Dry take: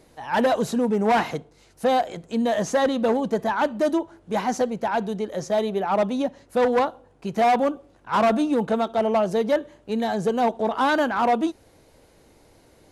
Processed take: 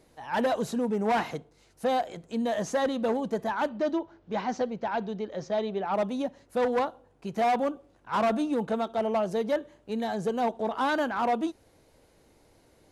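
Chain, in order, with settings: 3.69–5.94 s: low-pass 5.5 kHz 24 dB/octave; trim -6 dB

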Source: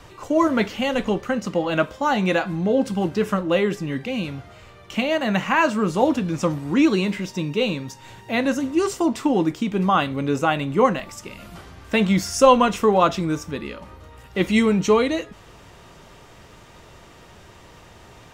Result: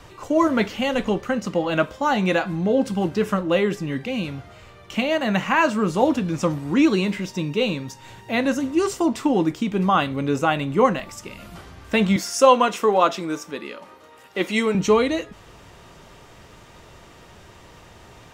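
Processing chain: 12.16–14.75 s: high-pass 300 Hz 12 dB/octave

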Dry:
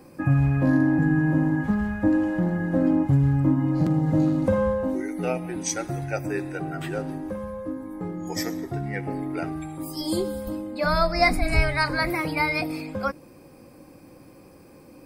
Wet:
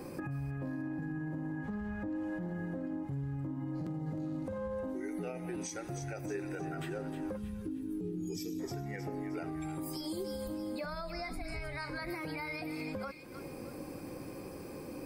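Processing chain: 1.57–2.15 s: treble shelf 12 kHz -> 7.8 kHz -11.5 dB; 7.37–8.60 s: time-frequency box 460–2300 Hz -23 dB; compression 6:1, threshold -39 dBFS, peak gain reduction 23 dB; feedback echo behind a high-pass 311 ms, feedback 39%, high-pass 1.6 kHz, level -9 dB; peak limiter -35 dBFS, peak gain reduction 7 dB; peaking EQ 410 Hz +5 dB 0.34 oct; trim +3.5 dB

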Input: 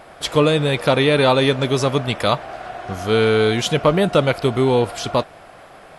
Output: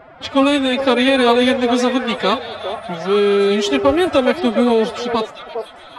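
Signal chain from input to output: level-controlled noise filter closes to 2.1 kHz, open at -11.5 dBFS; formant-preserving pitch shift +10.5 st; repeats whose band climbs or falls 407 ms, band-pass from 570 Hz, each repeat 1.4 oct, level -4.5 dB; trim +1.5 dB

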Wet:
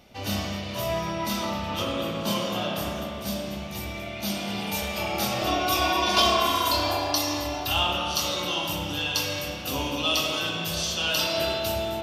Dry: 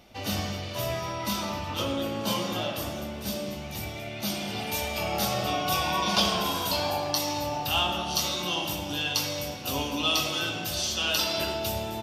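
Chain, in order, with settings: 5.41–7.73 s: comb 2.9 ms, depth 76%; spring tank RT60 2.1 s, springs 30 ms, chirp 25 ms, DRR 1 dB

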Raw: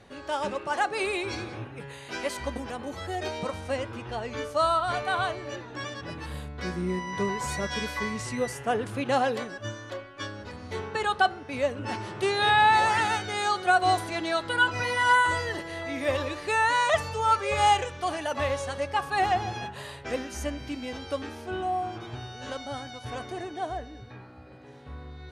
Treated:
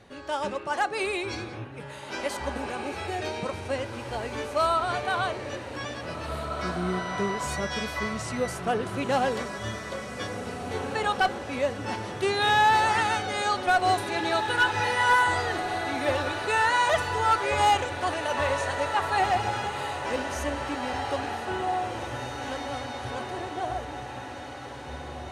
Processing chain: one-sided clip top -17.5 dBFS; echo that smears into a reverb 1966 ms, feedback 56%, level -7.5 dB

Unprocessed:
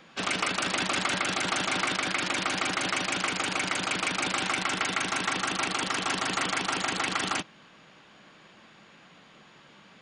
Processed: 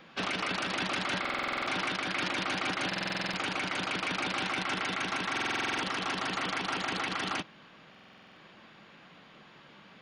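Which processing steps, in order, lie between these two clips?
peaking EQ 7.8 kHz -14 dB 0.59 oct; peak limiter -22 dBFS, peak gain reduction 7 dB; buffer glitch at 1.20/2.87/5.32/7.90 s, samples 2048, times 9

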